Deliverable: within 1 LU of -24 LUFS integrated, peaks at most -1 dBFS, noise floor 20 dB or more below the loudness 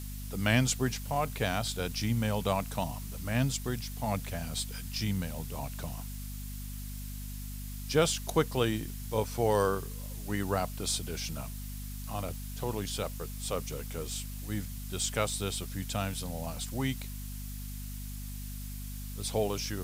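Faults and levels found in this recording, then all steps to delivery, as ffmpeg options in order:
hum 50 Hz; highest harmonic 250 Hz; hum level -38 dBFS; noise floor -40 dBFS; noise floor target -54 dBFS; loudness -33.5 LUFS; peak level -11.5 dBFS; loudness target -24.0 LUFS
-> -af "bandreject=f=50:t=h:w=4,bandreject=f=100:t=h:w=4,bandreject=f=150:t=h:w=4,bandreject=f=200:t=h:w=4,bandreject=f=250:t=h:w=4"
-af "afftdn=nr=14:nf=-40"
-af "volume=2.99"

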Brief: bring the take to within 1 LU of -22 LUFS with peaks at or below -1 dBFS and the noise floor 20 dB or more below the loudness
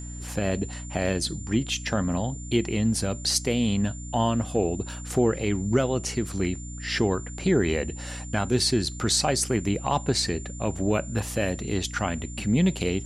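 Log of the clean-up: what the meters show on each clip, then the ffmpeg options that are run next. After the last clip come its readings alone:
hum 60 Hz; highest harmonic 300 Hz; hum level -35 dBFS; steady tone 7.2 kHz; tone level -42 dBFS; loudness -26.0 LUFS; peak level -9.0 dBFS; loudness target -22.0 LUFS
-> -af "bandreject=f=60:t=h:w=4,bandreject=f=120:t=h:w=4,bandreject=f=180:t=h:w=4,bandreject=f=240:t=h:w=4,bandreject=f=300:t=h:w=4"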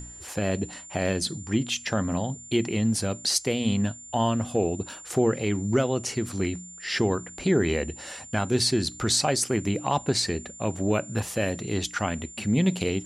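hum not found; steady tone 7.2 kHz; tone level -42 dBFS
-> -af "bandreject=f=7200:w=30"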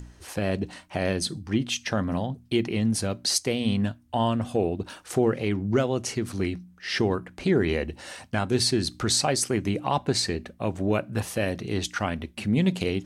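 steady tone not found; loudness -26.5 LUFS; peak level -9.5 dBFS; loudness target -22.0 LUFS
-> -af "volume=1.68"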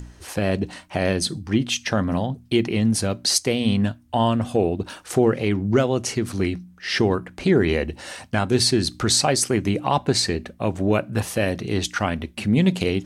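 loudness -22.0 LUFS; peak level -5.0 dBFS; noise floor -50 dBFS

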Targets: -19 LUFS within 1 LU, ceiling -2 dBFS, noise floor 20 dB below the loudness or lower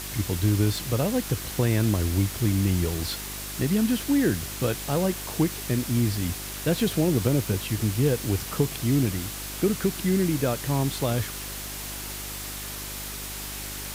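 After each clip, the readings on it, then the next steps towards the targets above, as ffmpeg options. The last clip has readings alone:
hum 50 Hz; highest harmonic 400 Hz; hum level -40 dBFS; noise floor -35 dBFS; noise floor target -46 dBFS; loudness -26.0 LUFS; peak level -9.5 dBFS; loudness target -19.0 LUFS
-> -af "bandreject=f=50:t=h:w=4,bandreject=f=100:t=h:w=4,bandreject=f=150:t=h:w=4,bandreject=f=200:t=h:w=4,bandreject=f=250:t=h:w=4,bandreject=f=300:t=h:w=4,bandreject=f=350:t=h:w=4,bandreject=f=400:t=h:w=4"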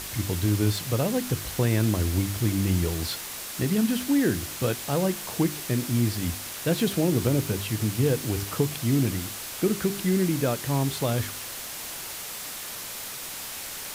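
hum not found; noise floor -37 dBFS; noise floor target -47 dBFS
-> -af "afftdn=nr=10:nf=-37"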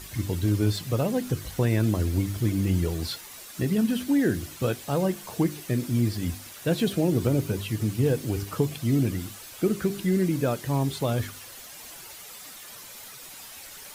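noise floor -44 dBFS; noise floor target -47 dBFS
-> -af "afftdn=nr=6:nf=-44"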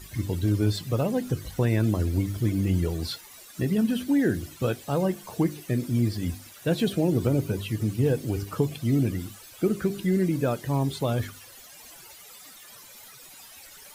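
noise floor -48 dBFS; loudness -26.5 LUFS; peak level -11.0 dBFS; loudness target -19.0 LUFS
-> -af "volume=2.37"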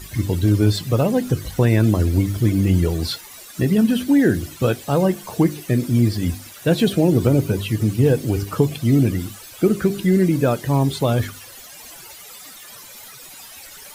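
loudness -19.0 LUFS; peak level -3.5 dBFS; noise floor -41 dBFS

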